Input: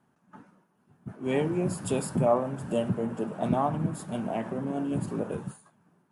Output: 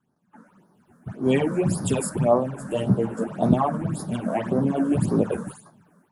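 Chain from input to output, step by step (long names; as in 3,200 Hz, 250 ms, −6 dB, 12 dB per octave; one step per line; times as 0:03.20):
automatic gain control gain up to 15 dB
all-pass phaser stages 8, 1.8 Hz, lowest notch 100–2,800 Hz
0:02.56–0:03.24: double-tracking delay 15 ms −4 dB
level −4 dB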